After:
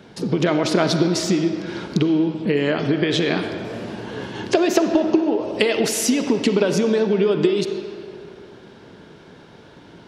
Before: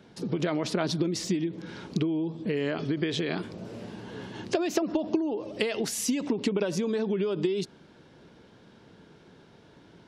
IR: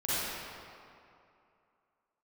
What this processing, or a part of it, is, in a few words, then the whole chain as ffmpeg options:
filtered reverb send: -filter_complex "[0:a]asplit=2[link_01][link_02];[link_02]highpass=280,lowpass=5400[link_03];[1:a]atrim=start_sample=2205[link_04];[link_03][link_04]afir=irnorm=-1:irlink=0,volume=-14dB[link_05];[link_01][link_05]amix=inputs=2:normalize=0,volume=8.5dB"

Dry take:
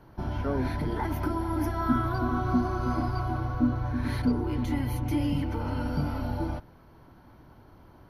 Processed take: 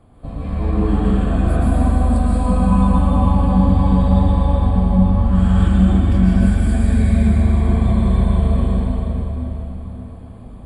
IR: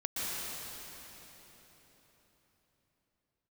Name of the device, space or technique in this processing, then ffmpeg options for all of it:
slowed and reverbed: -filter_complex "[0:a]lowshelf=frequency=230:gain=4.5,asetrate=33516,aresample=44100[link_01];[1:a]atrim=start_sample=2205[link_02];[link_01][link_02]afir=irnorm=-1:irlink=0,volume=3dB"

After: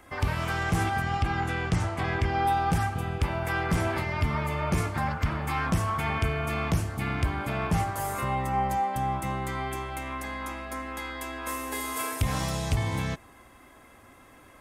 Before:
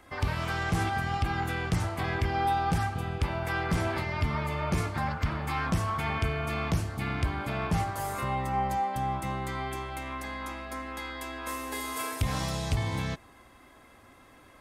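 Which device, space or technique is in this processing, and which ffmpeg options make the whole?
exciter from parts: -filter_complex "[0:a]asettb=1/sr,asplit=3[link_01][link_02][link_03];[link_01]atrim=end=1.024[link_04];[link_02]atrim=start=1.02:end=2.45,asetpts=PTS-STARTPTS,afade=type=in:duration=0.004:curve=qsin,afade=type=out:start_time=1.426:duration=0.004:curve=qsin,lowpass=7900[link_05];[link_03]atrim=start=2.446[link_06];[link_04][link_05]acrossfade=duration=0.004:curve1=hsin:curve2=qsin[link_07];[link_07][link_06]acrossfade=duration=0.004:curve1=qsin:curve2=hsin,asplit=2[link_08][link_09];[link_09]highpass=frequency=3900:width=0.5412,highpass=frequency=3900:width=1.3066,asoftclip=type=tanh:threshold=-36.5dB,volume=-7dB[link_10];[link_08][link_10]amix=inputs=2:normalize=0,volume=2dB"

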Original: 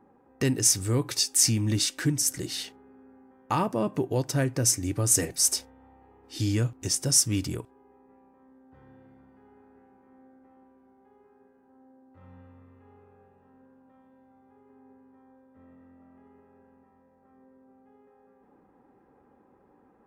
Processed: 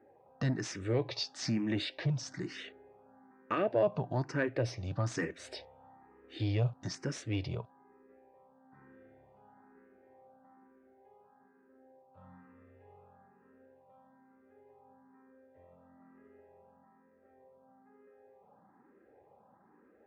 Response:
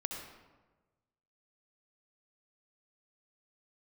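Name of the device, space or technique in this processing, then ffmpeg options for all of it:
barber-pole phaser into a guitar amplifier: -filter_complex "[0:a]asplit=2[link_01][link_02];[link_02]afreqshift=1.1[link_03];[link_01][link_03]amix=inputs=2:normalize=1,asoftclip=type=tanh:threshold=-20dB,highpass=100,equalizer=frequency=270:width_type=q:width=4:gain=-5,equalizer=frequency=630:width_type=q:width=4:gain=7,equalizer=frequency=1700:width_type=q:width=4:gain=3,equalizer=frequency=3100:width_type=q:width=4:gain=-4,lowpass=frequency=4000:width=0.5412,lowpass=frequency=4000:width=1.3066"

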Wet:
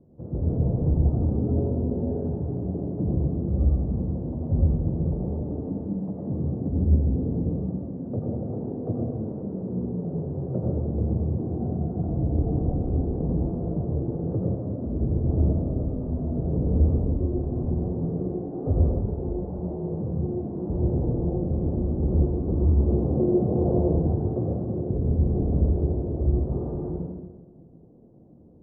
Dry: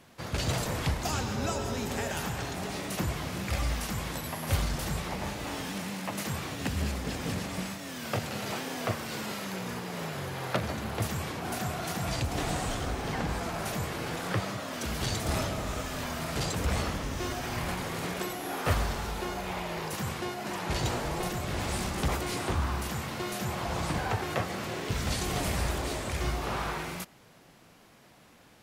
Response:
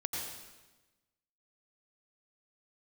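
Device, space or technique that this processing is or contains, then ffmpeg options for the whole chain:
next room: -filter_complex "[0:a]asettb=1/sr,asplit=3[link_01][link_02][link_03];[link_01]atrim=end=22.794[link_04];[link_02]atrim=start=22.79:end=23.8,asetpts=PTS-STARTPTS,afade=type=in:duration=0.004:curve=qsin,afade=type=out:start_time=1.006:duration=0.004:curve=qsin,equalizer=frequency=500:width=0.57:gain=10.5[link_05];[link_03]atrim=start=23.796[link_06];[link_04][link_05]acrossfade=duration=0.004:curve1=hsin:curve2=qsin[link_07];[link_07][link_06]acrossfade=duration=0.004:curve1=qsin:curve2=hsin,lowpass=frequency=470:width=0.5412,lowpass=frequency=470:width=1.3066[link_08];[1:a]atrim=start_sample=2205[link_09];[link_08][link_09]afir=irnorm=-1:irlink=0,volume=5.5dB"

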